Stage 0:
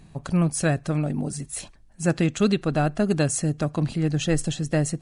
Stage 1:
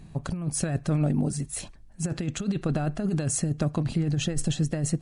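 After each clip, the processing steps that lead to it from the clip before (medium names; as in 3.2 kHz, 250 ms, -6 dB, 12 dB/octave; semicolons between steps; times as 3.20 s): bass shelf 350 Hz +5 dB; compressor with a negative ratio -20 dBFS, ratio -0.5; trim -4 dB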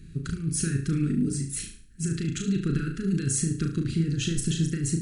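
elliptic band-stop 400–1400 Hz, stop band 50 dB; on a send: flutter echo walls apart 6.2 m, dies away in 0.43 s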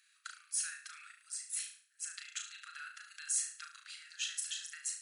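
steep high-pass 1.1 kHz 48 dB/octave; trim -5 dB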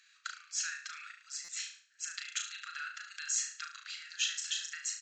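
resampled via 16 kHz; buffer glitch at 1.44 s, samples 256, times 7; trim +6 dB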